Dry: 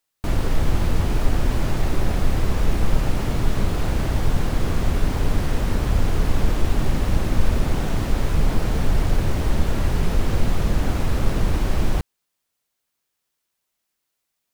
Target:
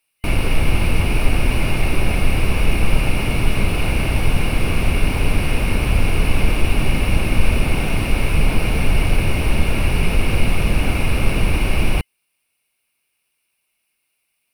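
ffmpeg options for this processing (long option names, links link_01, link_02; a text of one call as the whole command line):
ffmpeg -i in.wav -af "superequalizer=12b=3.98:15b=0.398:16b=2.24,volume=3dB" out.wav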